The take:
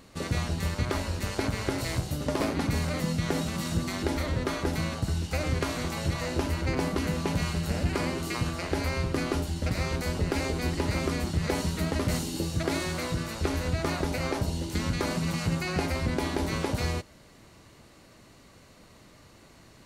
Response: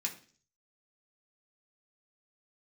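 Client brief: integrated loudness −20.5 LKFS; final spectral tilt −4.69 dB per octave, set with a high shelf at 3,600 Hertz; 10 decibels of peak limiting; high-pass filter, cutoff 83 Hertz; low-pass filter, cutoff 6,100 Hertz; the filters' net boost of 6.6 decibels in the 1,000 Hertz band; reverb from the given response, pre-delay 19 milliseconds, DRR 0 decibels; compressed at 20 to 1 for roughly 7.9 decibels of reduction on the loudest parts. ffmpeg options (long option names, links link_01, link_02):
-filter_complex "[0:a]highpass=83,lowpass=6100,equalizer=frequency=1000:width_type=o:gain=8.5,highshelf=frequency=3600:gain=-4,acompressor=threshold=-30dB:ratio=20,alimiter=level_in=2dB:limit=-24dB:level=0:latency=1,volume=-2dB,asplit=2[link_01][link_02];[1:a]atrim=start_sample=2205,adelay=19[link_03];[link_02][link_03]afir=irnorm=-1:irlink=0,volume=-1.5dB[link_04];[link_01][link_04]amix=inputs=2:normalize=0,volume=13.5dB"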